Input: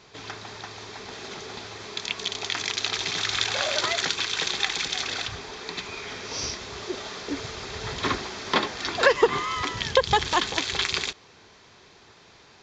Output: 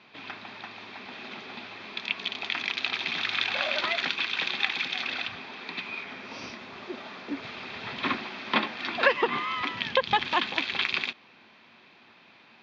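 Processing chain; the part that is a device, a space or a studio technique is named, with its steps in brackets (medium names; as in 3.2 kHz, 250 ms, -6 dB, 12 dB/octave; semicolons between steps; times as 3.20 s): 6.03–7.43 s: peaking EQ 3.2 kHz -5 dB 1.7 oct; kitchen radio (cabinet simulation 190–3900 Hz, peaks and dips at 230 Hz +8 dB, 430 Hz -9 dB, 2.5 kHz +7 dB); trim -2.5 dB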